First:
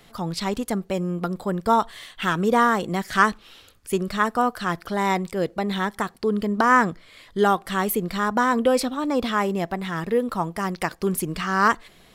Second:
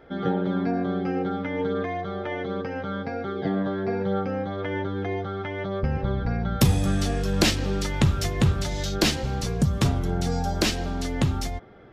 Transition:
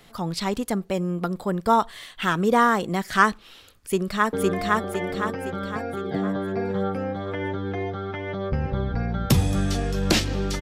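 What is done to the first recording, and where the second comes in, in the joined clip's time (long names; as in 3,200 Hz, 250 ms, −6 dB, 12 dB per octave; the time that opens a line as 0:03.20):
first
0:03.69–0:04.33: delay throw 510 ms, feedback 50%, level −0.5 dB
0:04.33: continue with second from 0:01.64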